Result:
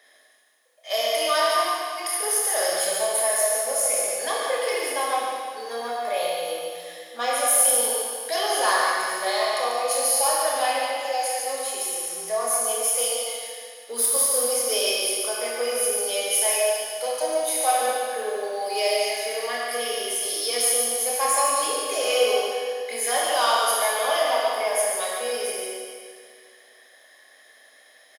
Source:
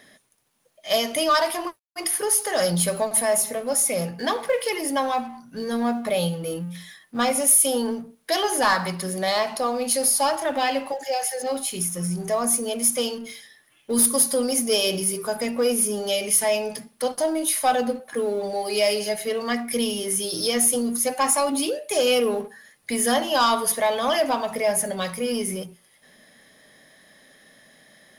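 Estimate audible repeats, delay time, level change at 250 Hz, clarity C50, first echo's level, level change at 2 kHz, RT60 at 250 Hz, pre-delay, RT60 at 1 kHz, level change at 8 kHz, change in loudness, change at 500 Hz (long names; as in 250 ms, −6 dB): 1, 143 ms, −16.5 dB, −2.5 dB, −6.0 dB, +1.5 dB, 2.1 s, 24 ms, 2.1 s, +0.5 dB, −0.5 dB, −1.0 dB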